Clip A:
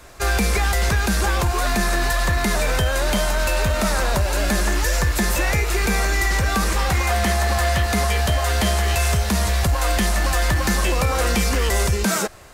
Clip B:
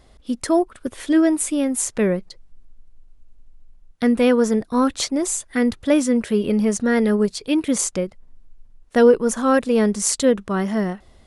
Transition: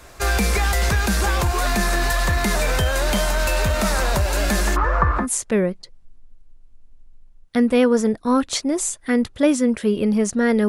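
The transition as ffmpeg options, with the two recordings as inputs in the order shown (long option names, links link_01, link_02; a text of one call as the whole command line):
ffmpeg -i cue0.wav -i cue1.wav -filter_complex "[0:a]asplit=3[link_01][link_02][link_03];[link_01]afade=type=out:start_time=4.75:duration=0.02[link_04];[link_02]lowpass=frequency=1200:width_type=q:width=5.9,afade=type=in:start_time=4.75:duration=0.02,afade=type=out:start_time=5.27:duration=0.02[link_05];[link_03]afade=type=in:start_time=5.27:duration=0.02[link_06];[link_04][link_05][link_06]amix=inputs=3:normalize=0,apad=whole_dur=10.68,atrim=end=10.68,atrim=end=5.27,asetpts=PTS-STARTPTS[link_07];[1:a]atrim=start=1.64:end=7.15,asetpts=PTS-STARTPTS[link_08];[link_07][link_08]acrossfade=duration=0.1:curve1=tri:curve2=tri" out.wav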